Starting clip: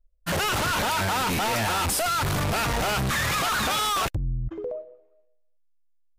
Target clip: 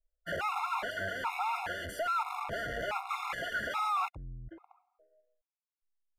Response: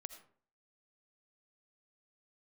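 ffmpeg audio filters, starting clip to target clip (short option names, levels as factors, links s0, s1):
-filter_complex "[0:a]acrossover=split=470 2600:gain=0.224 1 0.141[s0][s1][s2];[s0][s1][s2]amix=inputs=3:normalize=0,afftfilt=real='re*gt(sin(2*PI*1.2*pts/sr)*(1-2*mod(floor(b*sr/1024/700),2)),0)':imag='im*gt(sin(2*PI*1.2*pts/sr)*(1-2*mod(floor(b*sr/1024/700),2)),0)':win_size=1024:overlap=0.75,volume=0.668"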